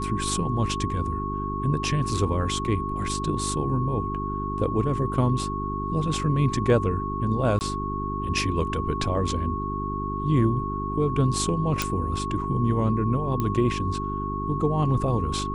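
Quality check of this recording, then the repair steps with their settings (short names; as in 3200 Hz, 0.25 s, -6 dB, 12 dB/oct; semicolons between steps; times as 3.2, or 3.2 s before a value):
hum 50 Hz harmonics 8 -31 dBFS
tone 1100 Hz -30 dBFS
7.59–7.61 gap 19 ms
11.82 pop
13.4 pop -14 dBFS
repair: de-click; de-hum 50 Hz, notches 8; notch 1100 Hz, Q 30; interpolate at 7.59, 19 ms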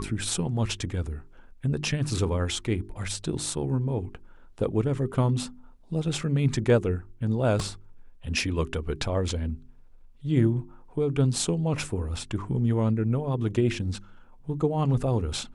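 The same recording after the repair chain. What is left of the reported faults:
none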